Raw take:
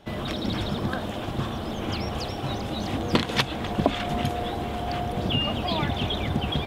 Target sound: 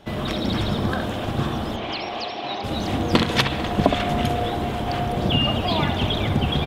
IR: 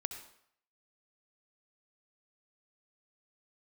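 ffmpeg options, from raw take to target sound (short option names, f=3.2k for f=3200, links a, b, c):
-filter_complex "[0:a]asettb=1/sr,asplit=3[a][b][c];[a]atrim=end=1.764[d];[b]atrim=start=1.76:end=2.64,asetpts=PTS-STARTPTS,afade=t=in:d=0.004:c=qsin,afade=t=out:st=0.876:d=0.004:c=qsin,highpass=390,equalizer=f=490:t=q:w=4:g=-6,equalizer=f=700:t=q:w=4:g=3,equalizer=f=1.4k:t=q:w=4:g=-6,equalizer=f=2.4k:t=q:w=4:g=3,equalizer=f=4.1k:t=q:w=4:g=3,lowpass=f=4.9k:w=0.5412,lowpass=f=4.9k:w=1.3066[e];[c]atrim=start=2.636[f];[d][e]acrossfade=d=0.004:c1=hsin:c2=qsin[g];[g][f]acrossfade=d=0.004:c1=qsin:c2=hsin,aecho=1:1:446:0.133,asplit=2[h][i];[1:a]atrim=start_sample=2205,lowpass=3.3k,adelay=67[j];[i][j]afir=irnorm=-1:irlink=0,volume=-5.5dB[k];[h][k]amix=inputs=2:normalize=0,volume=3.5dB"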